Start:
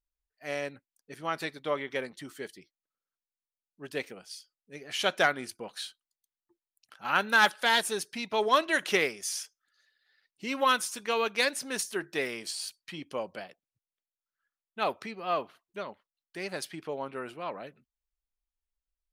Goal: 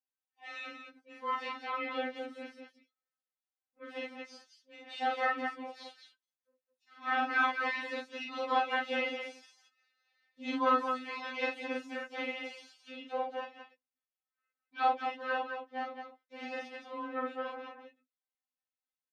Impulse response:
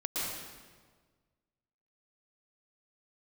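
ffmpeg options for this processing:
-filter_complex "[0:a]deesser=1,aecho=1:1:6.3:0.47,asplit=4[a][b][c][d];[b]asetrate=29433,aresample=44100,atempo=1.49831,volume=-18dB[e];[c]asetrate=55563,aresample=44100,atempo=0.793701,volume=-4dB[f];[d]asetrate=66075,aresample=44100,atempo=0.66742,volume=-10dB[g];[a][e][f][g]amix=inputs=4:normalize=0,highpass=140,lowpass=3.1k,asplit=2[h][i];[i]aecho=0:1:43.73|215.7:0.891|0.562[j];[h][j]amix=inputs=2:normalize=0,afftfilt=real='re*3.46*eq(mod(b,12),0)':imag='im*3.46*eq(mod(b,12),0)':win_size=2048:overlap=0.75,volume=-4.5dB"

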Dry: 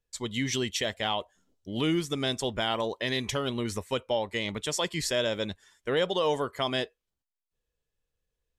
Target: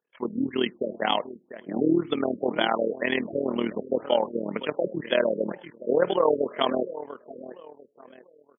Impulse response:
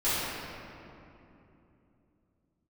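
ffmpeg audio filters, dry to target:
-filter_complex "[0:a]highpass=f=200:w=0.5412,highpass=f=200:w=1.3066,tremolo=f=39:d=0.824,asplit=2[a][b];[b]adelay=694,lowpass=f=2.5k:p=1,volume=-14.5dB,asplit=2[c][d];[d]adelay=694,lowpass=f=2.5k:p=1,volume=0.32,asplit=2[e][f];[f]adelay=694,lowpass=f=2.5k:p=1,volume=0.32[g];[a][c][e][g]amix=inputs=4:normalize=0,asplit=2[h][i];[1:a]atrim=start_sample=2205,afade=t=out:st=0.17:d=0.01,atrim=end_sample=7938[j];[i][j]afir=irnorm=-1:irlink=0,volume=-32dB[k];[h][k]amix=inputs=2:normalize=0,afftfilt=real='re*lt(b*sr/1024,590*pow(3500/590,0.5+0.5*sin(2*PI*2*pts/sr)))':imag='im*lt(b*sr/1024,590*pow(3500/590,0.5+0.5*sin(2*PI*2*pts/sr)))':win_size=1024:overlap=0.75,volume=9dB"

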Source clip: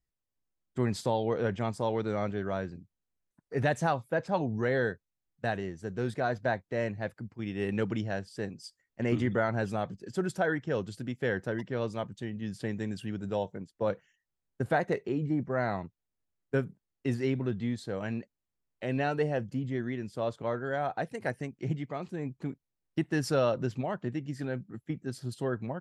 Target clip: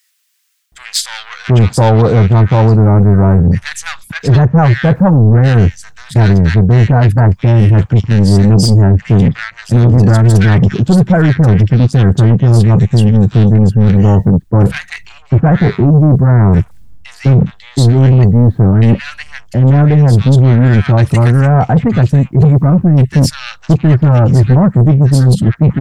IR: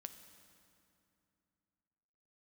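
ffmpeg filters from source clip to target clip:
-filter_complex "[0:a]asubboost=boost=9.5:cutoff=150,areverse,acompressor=threshold=-36dB:ratio=4,areverse,asoftclip=type=tanh:threshold=-38dB,acrossover=split=1500[a][b];[a]adelay=720[c];[c][b]amix=inputs=2:normalize=0,alimiter=level_in=35.5dB:limit=-1dB:release=50:level=0:latency=1,volume=-1dB"

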